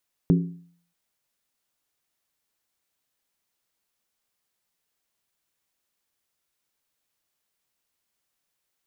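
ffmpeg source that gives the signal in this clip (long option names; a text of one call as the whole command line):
ffmpeg -f lavfi -i "aevalsrc='0.224*pow(10,-3*t/0.55)*sin(2*PI*172*t)+0.112*pow(10,-3*t/0.436)*sin(2*PI*274.2*t)+0.0562*pow(10,-3*t/0.376)*sin(2*PI*367.4*t)+0.0282*pow(10,-3*t/0.363)*sin(2*PI*394.9*t)+0.0141*pow(10,-3*t/0.338)*sin(2*PI*456.3*t)':duration=0.63:sample_rate=44100" out.wav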